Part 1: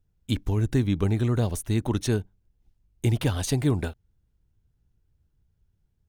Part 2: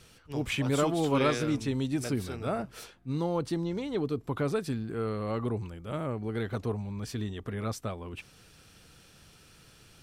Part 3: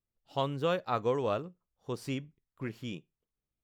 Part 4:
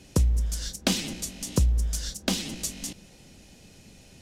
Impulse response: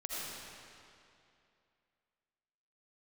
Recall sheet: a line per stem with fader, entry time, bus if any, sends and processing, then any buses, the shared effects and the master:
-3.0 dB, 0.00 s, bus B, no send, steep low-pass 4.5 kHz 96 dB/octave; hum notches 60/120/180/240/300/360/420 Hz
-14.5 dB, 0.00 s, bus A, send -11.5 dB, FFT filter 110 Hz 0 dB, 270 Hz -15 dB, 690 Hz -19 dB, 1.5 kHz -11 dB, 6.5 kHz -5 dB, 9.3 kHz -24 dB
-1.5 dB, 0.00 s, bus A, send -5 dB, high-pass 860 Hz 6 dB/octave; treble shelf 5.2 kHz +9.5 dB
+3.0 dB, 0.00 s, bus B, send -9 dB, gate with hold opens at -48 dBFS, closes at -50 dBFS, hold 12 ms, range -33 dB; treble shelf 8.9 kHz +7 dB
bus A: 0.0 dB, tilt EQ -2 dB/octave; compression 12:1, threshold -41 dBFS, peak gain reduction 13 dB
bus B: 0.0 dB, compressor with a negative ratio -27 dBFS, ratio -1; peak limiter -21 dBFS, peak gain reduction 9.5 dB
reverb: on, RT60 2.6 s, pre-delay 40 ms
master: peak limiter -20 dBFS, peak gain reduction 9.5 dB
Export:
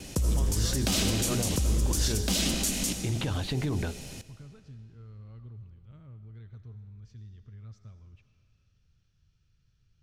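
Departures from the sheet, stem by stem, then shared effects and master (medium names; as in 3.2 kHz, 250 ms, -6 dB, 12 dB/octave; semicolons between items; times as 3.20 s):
stem 3: send off; master: missing peak limiter -20 dBFS, peak gain reduction 9.5 dB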